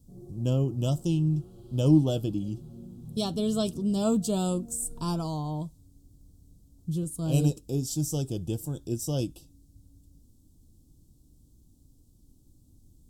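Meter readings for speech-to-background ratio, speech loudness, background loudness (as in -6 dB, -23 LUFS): 19.5 dB, -28.5 LUFS, -48.0 LUFS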